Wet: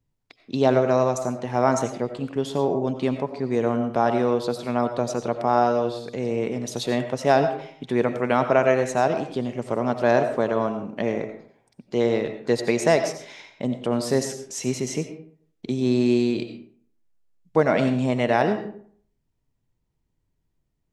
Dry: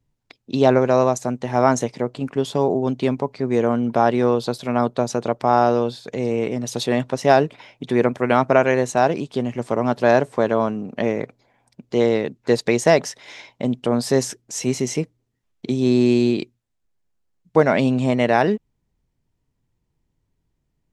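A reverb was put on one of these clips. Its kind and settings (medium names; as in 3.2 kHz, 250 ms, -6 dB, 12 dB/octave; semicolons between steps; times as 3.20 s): algorithmic reverb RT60 0.56 s, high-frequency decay 0.6×, pre-delay 50 ms, DRR 8 dB; trim -4 dB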